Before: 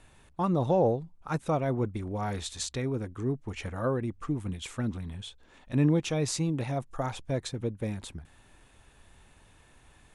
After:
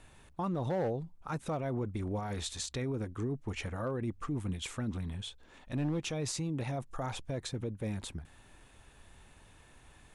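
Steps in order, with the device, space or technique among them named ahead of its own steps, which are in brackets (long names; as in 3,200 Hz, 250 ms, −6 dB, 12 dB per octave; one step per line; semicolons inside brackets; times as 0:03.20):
clipper into limiter (hard clipping −20 dBFS, distortion −18 dB; brickwall limiter −27.5 dBFS, peak gain reduction 7.5 dB)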